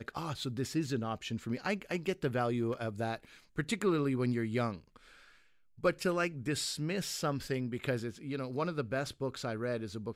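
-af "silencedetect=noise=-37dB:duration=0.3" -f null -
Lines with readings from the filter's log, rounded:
silence_start: 3.16
silence_end: 3.58 | silence_duration: 0.43
silence_start: 4.76
silence_end: 5.84 | silence_duration: 1.08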